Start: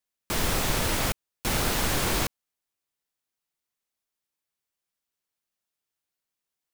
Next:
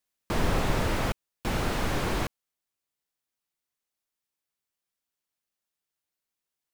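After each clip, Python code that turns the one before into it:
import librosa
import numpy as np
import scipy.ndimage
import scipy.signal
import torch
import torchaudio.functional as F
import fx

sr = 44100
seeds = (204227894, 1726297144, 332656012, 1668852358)

y = fx.rider(x, sr, range_db=10, speed_s=2.0)
y = fx.slew_limit(y, sr, full_power_hz=66.0)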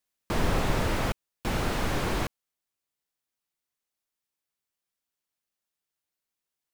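y = x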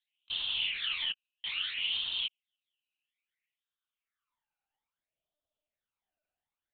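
y = fx.phaser_stages(x, sr, stages=12, low_hz=340.0, high_hz=2000.0, hz=0.6, feedback_pct=35)
y = fx.filter_sweep_highpass(y, sr, from_hz=3000.0, to_hz=590.0, start_s=2.86, end_s=5.11, q=5.0)
y = fx.lpc_monotone(y, sr, seeds[0], pitch_hz=300.0, order=10)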